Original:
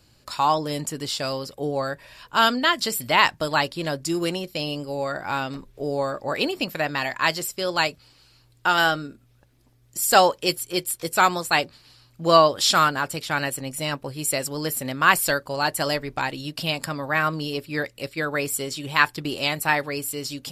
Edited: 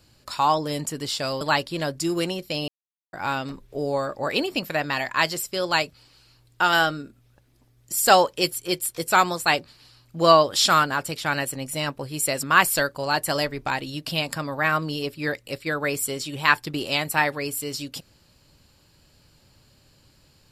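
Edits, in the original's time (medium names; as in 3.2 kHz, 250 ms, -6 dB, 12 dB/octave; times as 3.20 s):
1.41–3.46 s: delete
4.73–5.18 s: mute
14.48–14.94 s: delete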